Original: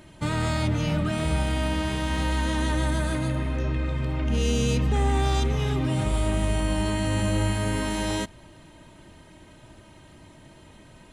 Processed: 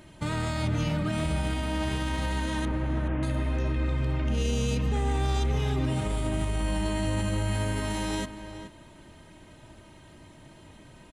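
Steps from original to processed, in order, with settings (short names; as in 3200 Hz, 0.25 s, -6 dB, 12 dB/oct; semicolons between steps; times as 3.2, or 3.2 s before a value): 2.65–3.23 delta modulation 16 kbps, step -42.5 dBFS; limiter -18.5 dBFS, peak gain reduction 6 dB; outdoor echo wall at 73 m, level -10 dB; gain -1.5 dB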